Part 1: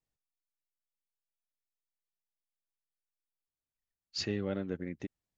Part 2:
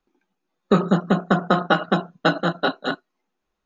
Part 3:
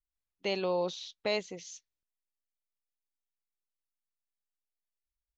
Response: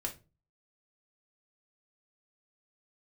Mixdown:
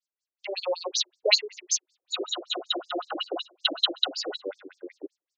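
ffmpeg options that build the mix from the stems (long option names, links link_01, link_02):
-filter_complex "[0:a]highpass=240,volume=-9dB[link_01];[1:a]lowpass=4900,alimiter=limit=-16.5dB:level=0:latency=1:release=69,aexciter=amount=15:drive=7.3:freq=2700,adelay=1400,volume=-19dB,asplit=2[link_02][link_03];[link_03]volume=-3dB[link_04];[2:a]equalizer=frequency=5300:width=0.44:gain=12,bandreject=frequency=60:width_type=h:width=6,bandreject=frequency=120:width_type=h:width=6,bandreject=frequency=180:width_type=h:width=6,bandreject=frequency=240:width_type=h:width=6,bandreject=frequency=300:width_type=h:width=6,bandreject=frequency=360:width_type=h:width=6,bandreject=frequency=420:width_type=h:width=6,volume=-0.5dB[link_05];[link_01][link_02]amix=inputs=2:normalize=0,equalizer=frequency=290:width_type=o:width=1.3:gain=7.5,alimiter=level_in=0.5dB:limit=-24dB:level=0:latency=1:release=358,volume=-0.5dB,volume=0dB[link_06];[3:a]atrim=start_sample=2205[link_07];[link_04][link_07]afir=irnorm=-1:irlink=0[link_08];[link_05][link_06][link_08]amix=inputs=3:normalize=0,highshelf=frequency=6600:gain=4.5,dynaudnorm=framelen=510:gausssize=3:maxgain=16dB,afftfilt=real='re*between(b*sr/1024,410*pow(6400/410,0.5+0.5*sin(2*PI*5.3*pts/sr))/1.41,410*pow(6400/410,0.5+0.5*sin(2*PI*5.3*pts/sr))*1.41)':imag='im*between(b*sr/1024,410*pow(6400/410,0.5+0.5*sin(2*PI*5.3*pts/sr))/1.41,410*pow(6400/410,0.5+0.5*sin(2*PI*5.3*pts/sr))*1.41)':win_size=1024:overlap=0.75"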